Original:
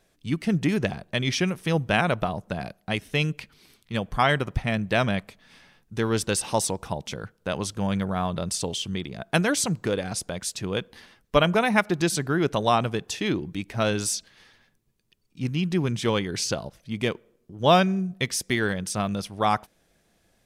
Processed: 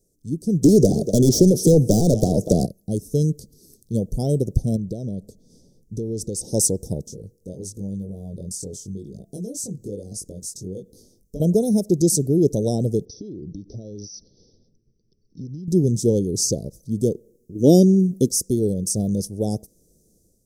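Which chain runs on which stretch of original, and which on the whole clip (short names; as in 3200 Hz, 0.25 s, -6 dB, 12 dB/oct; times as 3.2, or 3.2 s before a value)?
0.64–2.66 echo 0.241 s -21 dB + overdrive pedal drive 27 dB, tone 2800 Hz, clips at -7.5 dBFS + three-band squash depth 70%
4.76–6.53 high shelf 7400 Hz -10.5 dB + compressor 4:1, threshold -30 dBFS
7.06–11.4 compressor 2:1, threshold -38 dBFS + chorus 1 Hz, delay 19.5 ms, depth 2.7 ms
13.05–15.68 compressor 16:1, threshold -36 dBFS + brick-wall FIR low-pass 6100 Hz
17.55–18.29 high shelf 2800 Hz +8.5 dB + small resonant body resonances 290/3000 Hz, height 13 dB, ringing for 20 ms
whole clip: elliptic band-stop 470–5900 Hz, stop band 50 dB; AGC gain up to 7.5 dB; high shelf 7600 Hz +4.5 dB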